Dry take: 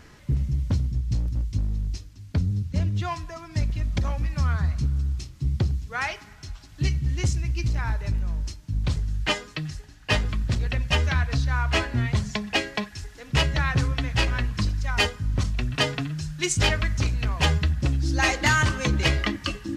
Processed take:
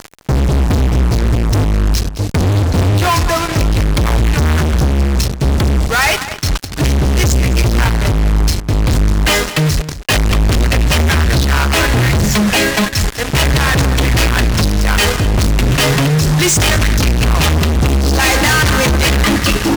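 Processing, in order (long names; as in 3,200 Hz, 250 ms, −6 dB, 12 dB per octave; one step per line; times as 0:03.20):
0:01.24–0:01.64: parametric band 100 Hz +12.5 dB 0.2 octaves
fuzz pedal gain 47 dB, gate −42 dBFS
slap from a distant wall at 36 metres, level −13 dB
level +2.5 dB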